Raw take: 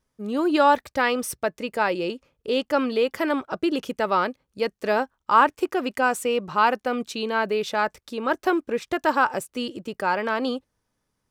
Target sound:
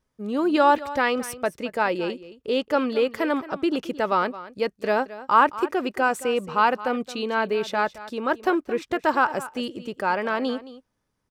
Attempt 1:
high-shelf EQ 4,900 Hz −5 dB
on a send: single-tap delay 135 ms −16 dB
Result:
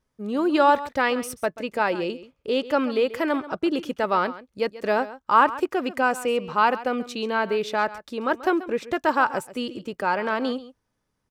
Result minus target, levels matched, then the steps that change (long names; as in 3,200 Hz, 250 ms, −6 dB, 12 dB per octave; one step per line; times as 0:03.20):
echo 85 ms early
change: single-tap delay 220 ms −16 dB